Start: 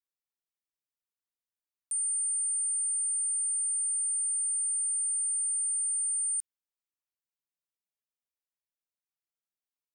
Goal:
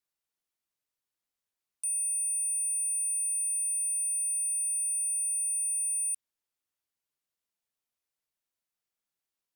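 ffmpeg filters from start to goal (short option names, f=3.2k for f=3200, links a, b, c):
-af "asetrate=45938,aresample=44100,asoftclip=type=tanh:threshold=-33.5dB,volume=5dB"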